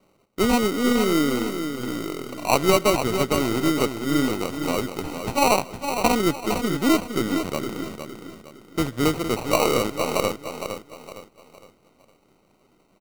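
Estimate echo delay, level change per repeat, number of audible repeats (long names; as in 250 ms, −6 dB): 461 ms, −9.0 dB, 4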